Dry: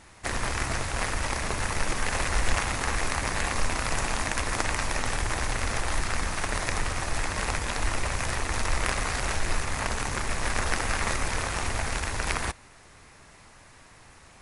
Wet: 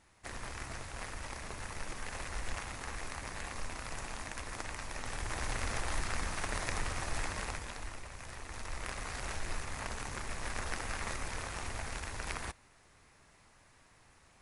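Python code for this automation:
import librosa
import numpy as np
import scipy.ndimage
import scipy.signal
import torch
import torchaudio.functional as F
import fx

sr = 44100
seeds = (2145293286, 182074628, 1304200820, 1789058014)

y = fx.gain(x, sr, db=fx.line((4.88, -14.0), (5.51, -7.5), (7.26, -7.5), (8.08, -19.0), (9.26, -11.0)))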